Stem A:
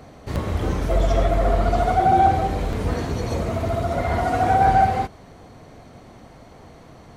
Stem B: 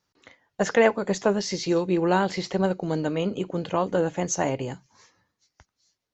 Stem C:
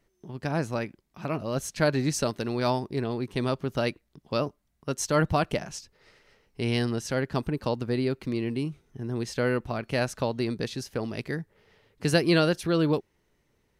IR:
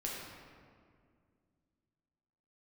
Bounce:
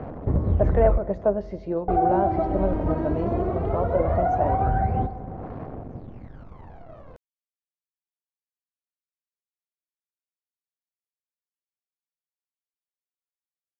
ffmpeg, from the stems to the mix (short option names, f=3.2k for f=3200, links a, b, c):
-filter_complex "[0:a]acrusher=bits=8:dc=4:mix=0:aa=0.000001,volume=-2.5dB,asplit=3[a][b][c];[a]atrim=end=0.98,asetpts=PTS-STARTPTS,afade=t=out:st=0.976:d=0.004:c=hsin[d];[b]atrim=start=0.98:end=1.88,asetpts=PTS-STARTPTS,volume=0[e];[c]atrim=start=1.88,asetpts=PTS-STARTPTS,afade=t=in:d=0.004:c=hsin[f];[d][e][f]concat=n=3:v=0:a=1,asplit=2[g][h];[h]volume=-13dB[i];[1:a]equalizer=f=630:t=o:w=0.29:g=11.5,volume=-5dB,asplit=2[j][k];[k]volume=-20.5dB[l];[g]aphaser=in_gain=1:out_gain=1:delay=3.2:decay=0.74:speed=0.18:type=sinusoidal,alimiter=limit=-14dB:level=0:latency=1:release=182,volume=0dB[m];[3:a]atrim=start_sample=2205[n];[i][l]amix=inputs=2:normalize=0[o];[o][n]afir=irnorm=-1:irlink=0[p];[j][m][p]amix=inputs=3:normalize=0,lowpass=1k"